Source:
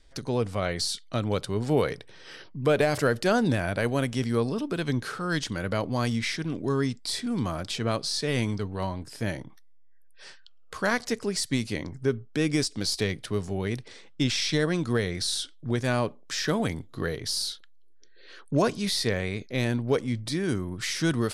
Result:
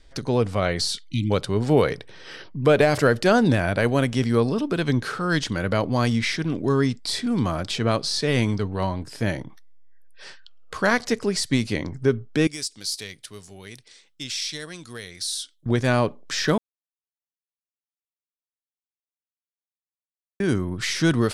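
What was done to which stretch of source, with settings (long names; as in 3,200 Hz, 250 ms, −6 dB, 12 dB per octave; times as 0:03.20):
0:01.07–0:01.31: time-frequency box erased 330–2,000 Hz
0:12.47–0:15.66: first-order pre-emphasis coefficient 0.9
0:16.58–0:20.40: silence
whole clip: high-shelf EQ 8,100 Hz −7 dB; level +5.5 dB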